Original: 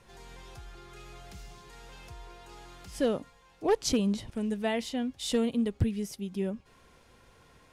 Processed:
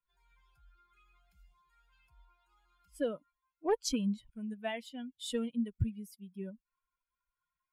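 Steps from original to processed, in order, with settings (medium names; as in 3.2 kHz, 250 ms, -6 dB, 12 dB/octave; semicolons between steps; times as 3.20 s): expander on every frequency bin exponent 2; trim -3 dB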